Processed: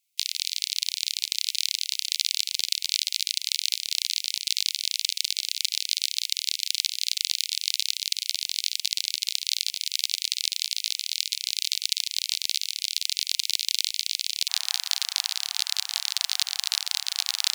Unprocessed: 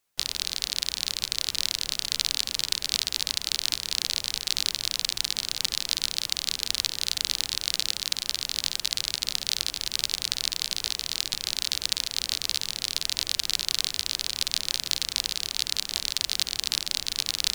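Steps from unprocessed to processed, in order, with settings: steep high-pass 2.1 kHz 96 dB/octave, from 14.48 s 690 Hz; trim +1 dB

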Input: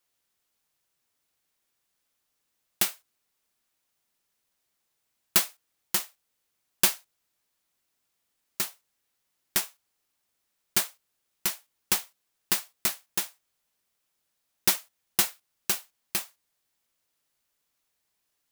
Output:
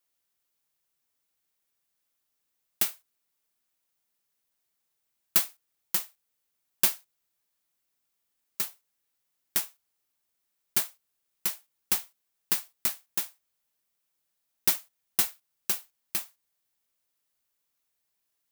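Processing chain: treble shelf 12 kHz +7 dB; trim -5 dB

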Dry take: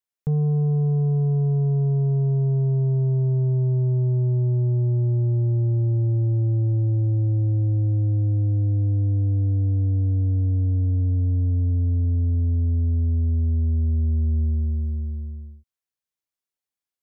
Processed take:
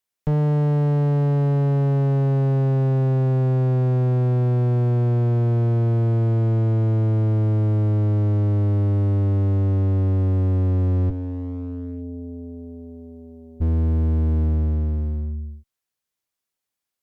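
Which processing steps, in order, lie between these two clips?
11.09–13.60 s: high-pass 190 Hz -> 640 Hz 12 dB/octave; one-sided clip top -32.5 dBFS, bottom -19.5 dBFS; trim +6 dB

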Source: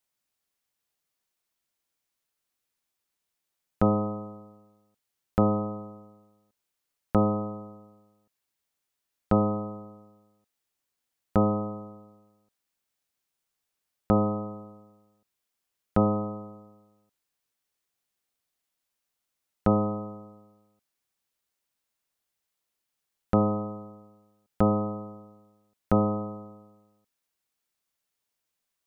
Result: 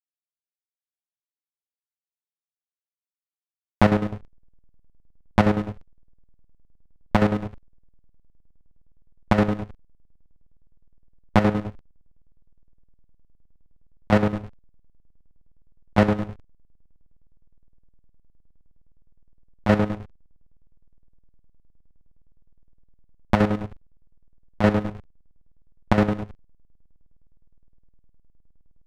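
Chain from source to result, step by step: self-modulated delay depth 0.6 ms; hysteresis with a dead band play -25.5 dBFS; square tremolo 9.7 Hz, depth 65%, duty 50%; trim +8 dB

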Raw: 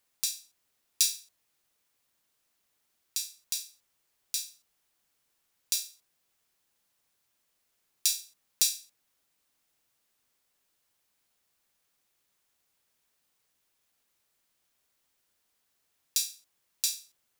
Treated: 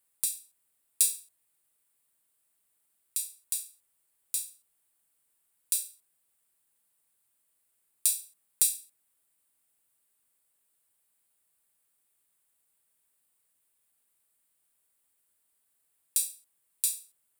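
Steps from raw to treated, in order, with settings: resonant high shelf 7.3 kHz +6.5 dB, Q 3; trim -5 dB

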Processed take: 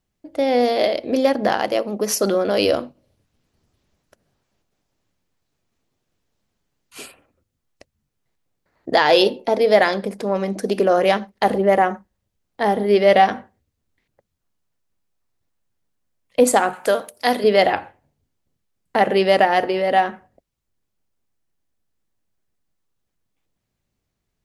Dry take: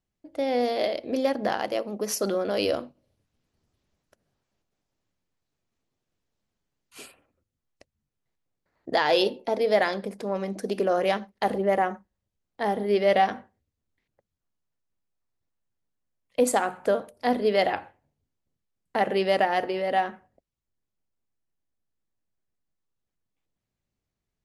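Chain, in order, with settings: 16.73–17.44 s: tilt EQ +3 dB/octave; trim +7.5 dB

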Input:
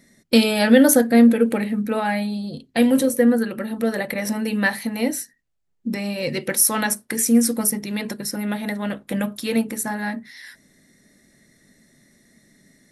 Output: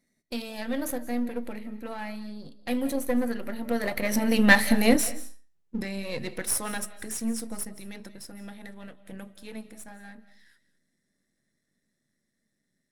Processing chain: partial rectifier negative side -7 dB; Doppler pass-by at 4.69 s, 11 m/s, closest 3.7 m; reverberation RT60 0.40 s, pre-delay 133 ms, DRR 15.5 dB; trim +6.5 dB

